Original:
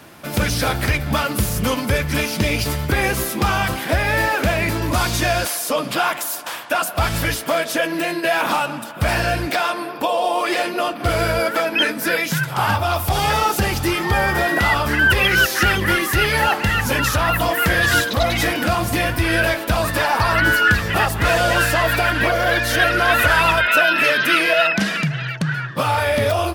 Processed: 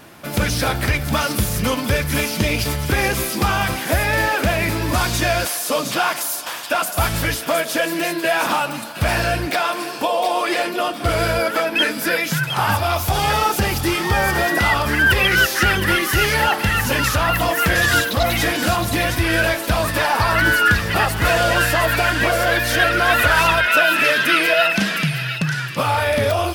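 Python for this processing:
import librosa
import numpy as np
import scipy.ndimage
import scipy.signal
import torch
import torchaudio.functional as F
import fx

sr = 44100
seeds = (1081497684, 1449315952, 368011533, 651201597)

y = fx.wow_flutter(x, sr, seeds[0], rate_hz=2.1, depth_cents=19.0)
y = fx.echo_wet_highpass(y, sr, ms=714, feedback_pct=33, hz=3500.0, wet_db=-4)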